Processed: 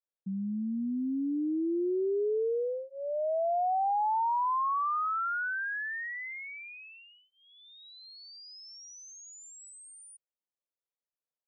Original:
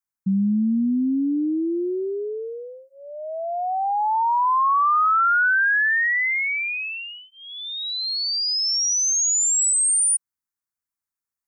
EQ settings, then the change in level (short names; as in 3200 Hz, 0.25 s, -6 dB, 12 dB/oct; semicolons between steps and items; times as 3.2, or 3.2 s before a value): band-pass 530 Hz, Q 4.2; +6.0 dB